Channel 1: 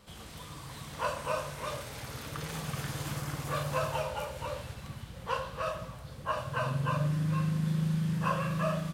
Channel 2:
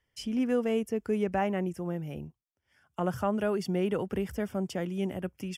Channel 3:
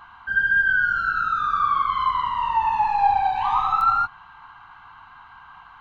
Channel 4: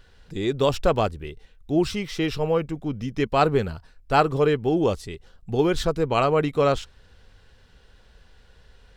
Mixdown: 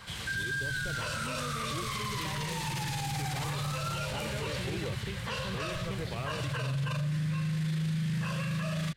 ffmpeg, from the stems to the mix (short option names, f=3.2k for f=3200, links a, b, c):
-filter_complex "[0:a]volume=2.5dB[a];[1:a]adelay=900,volume=-11dB[b];[2:a]volume=-9.5dB[c];[3:a]deesser=0.95,volume=-17dB[d];[a][b][c][d]amix=inputs=4:normalize=0,equalizer=f=125:t=o:w=1:g=8,equalizer=f=250:t=o:w=1:g=-3,equalizer=f=1k:t=o:w=1:g=-3,equalizer=f=2k:t=o:w=1:g=10,equalizer=f=4k:t=o:w=1:g=7,equalizer=f=8k:t=o:w=1:g=5,acrossover=split=460|3000[e][f][g];[f]acompressor=threshold=-33dB:ratio=6[h];[e][h][g]amix=inputs=3:normalize=0,alimiter=level_in=2dB:limit=-24dB:level=0:latency=1:release=11,volume=-2dB"